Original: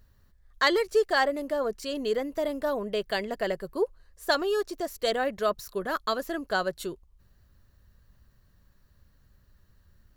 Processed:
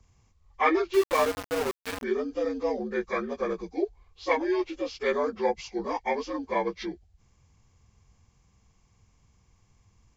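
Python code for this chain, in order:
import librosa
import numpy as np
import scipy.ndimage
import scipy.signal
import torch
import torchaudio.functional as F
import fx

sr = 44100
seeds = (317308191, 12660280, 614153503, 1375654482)

y = fx.partial_stretch(x, sr, pct=77)
y = fx.sample_gate(y, sr, floor_db=-28.5, at=(0.93, 2.02), fade=0.02)
y = F.gain(torch.from_numpy(y), 1.5).numpy()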